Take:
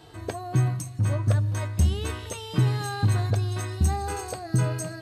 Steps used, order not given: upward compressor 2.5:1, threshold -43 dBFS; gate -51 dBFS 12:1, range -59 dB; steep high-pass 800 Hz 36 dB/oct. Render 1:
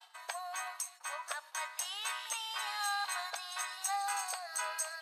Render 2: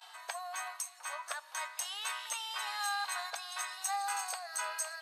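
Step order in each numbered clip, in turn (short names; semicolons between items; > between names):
upward compressor > steep high-pass > gate; gate > upward compressor > steep high-pass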